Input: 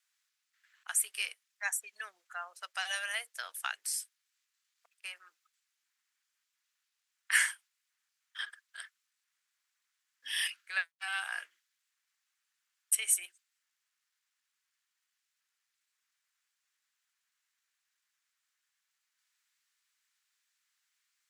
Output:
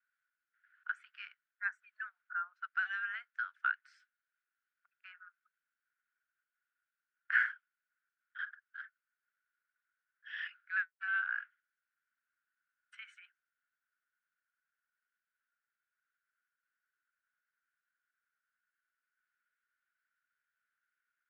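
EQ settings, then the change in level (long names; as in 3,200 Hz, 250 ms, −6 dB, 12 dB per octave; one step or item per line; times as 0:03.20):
four-pole ladder high-pass 1,400 Hz, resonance 85%
high-frequency loss of the air 110 metres
head-to-tape spacing loss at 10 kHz 37 dB
+7.5 dB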